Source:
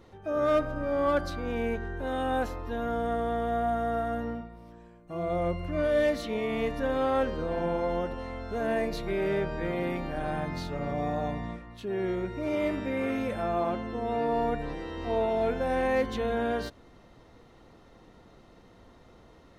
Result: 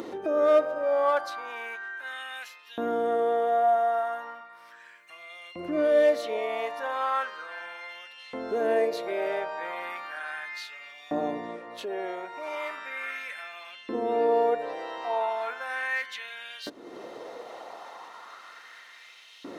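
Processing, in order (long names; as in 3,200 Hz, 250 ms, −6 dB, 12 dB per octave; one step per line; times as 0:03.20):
upward compression, threshold −29 dBFS
auto-filter high-pass saw up 0.36 Hz 290–3,100 Hz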